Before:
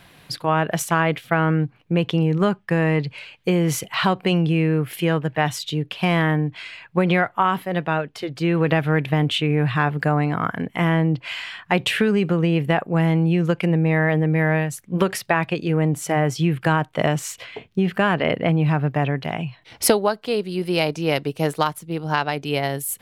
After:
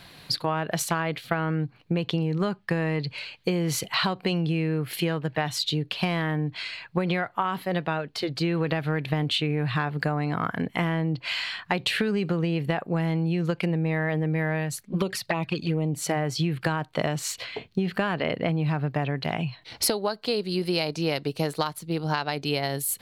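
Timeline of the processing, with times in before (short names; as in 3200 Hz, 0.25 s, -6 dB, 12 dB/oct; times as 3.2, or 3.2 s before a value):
14.83–15.98 envelope flanger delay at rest 4.9 ms, full sweep at -15 dBFS
whole clip: bell 4300 Hz +10.5 dB 0.34 oct; compressor, threshold -22 dBFS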